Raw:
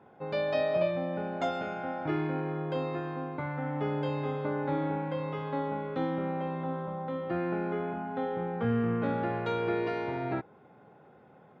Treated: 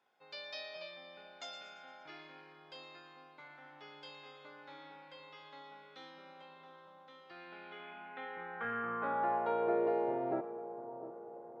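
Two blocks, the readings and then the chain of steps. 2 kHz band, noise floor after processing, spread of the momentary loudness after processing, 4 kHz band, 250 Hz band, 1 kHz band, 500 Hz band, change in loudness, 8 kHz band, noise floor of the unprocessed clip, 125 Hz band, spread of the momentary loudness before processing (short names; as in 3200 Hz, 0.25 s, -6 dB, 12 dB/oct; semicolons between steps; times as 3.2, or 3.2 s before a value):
-6.0 dB, -59 dBFS, 21 LU, -2.5 dB, -14.5 dB, -5.0 dB, -8.5 dB, -6.5 dB, n/a, -57 dBFS, -25.0 dB, 6 LU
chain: band-pass sweep 5200 Hz -> 540 Hz, 7.27–9.9; split-band echo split 1100 Hz, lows 0.702 s, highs 0.115 s, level -13 dB; gain +4.5 dB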